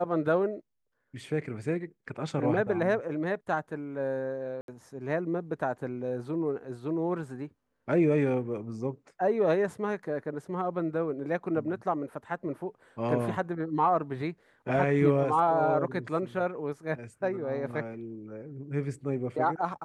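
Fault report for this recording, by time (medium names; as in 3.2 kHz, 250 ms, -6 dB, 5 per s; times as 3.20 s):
4.61–4.68 s: dropout 72 ms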